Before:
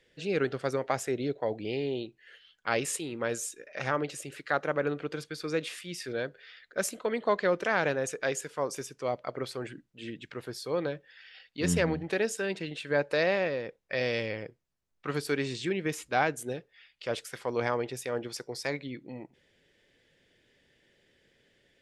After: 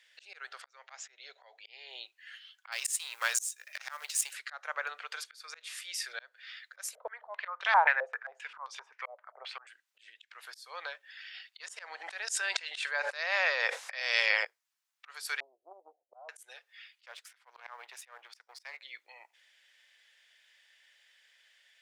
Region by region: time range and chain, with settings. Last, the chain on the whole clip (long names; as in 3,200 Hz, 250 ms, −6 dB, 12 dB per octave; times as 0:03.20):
0:00.62–0:01.89: elliptic low-pass filter 7,100 Hz + volume swells 328 ms
0:02.72–0:04.33: mu-law and A-law mismatch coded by A + high-shelf EQ 2,100 Hz +11.5 dB
0:06.95–0:09.67: parametric band 860 Hz +4 dB 0.4 octaves + low-pass on a step sequencer 7.6 Hz 540–3,500 Hz
0:11.60–0:14.45: low-pass filter 10,000 Hz 24 dB per octave + low-shelf EQ 170 Hz +8 dB + envelope flattener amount 100%
0:15.40–0:16.29: Butterworth low-pass 730 Hz 96 dB per octave + notch filter 450 Hz, Q 5.8 + highs frequency-modulated by the lows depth 0.25 ms
0:17.06–0:18.82: mu-law and A-law mismatch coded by A + bass and treble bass +9 dB, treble −9 dB + highs frequency-modulated by the lows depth 0.17 ms
whole clip: Bessel high-pass filter 1,300 Hz, order 6; dynamic equaliser 2,800 Hz, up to −4 dB, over −50 dBFS, Q 1.4; volume swells 331 ms; level +6 dB